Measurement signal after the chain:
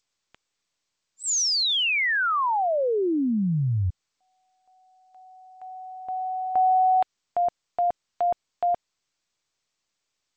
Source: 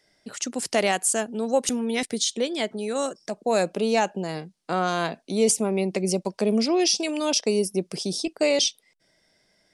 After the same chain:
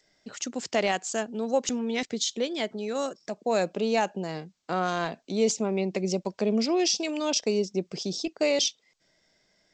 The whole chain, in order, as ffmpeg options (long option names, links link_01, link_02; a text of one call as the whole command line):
ffmpeg -i in.wav -af "volume=-3dB" -ar 16000 -c:a g722 out.g722